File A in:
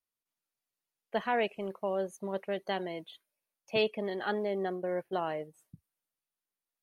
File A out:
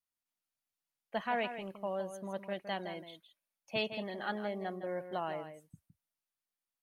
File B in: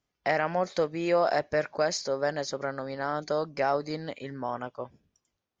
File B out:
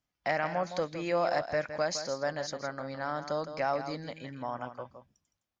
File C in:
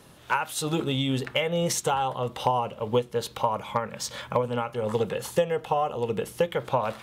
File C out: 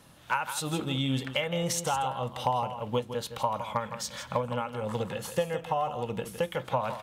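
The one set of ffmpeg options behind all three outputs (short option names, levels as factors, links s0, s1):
-filter_complex "[0:a]equalizer=f=410:w=3.8:g=-9,asplit=2[s0][s1];[s1]aecho=0:1:163:0.316[s2];[s0][s2]amix=inputs=2:normalize=0,volume=0.708"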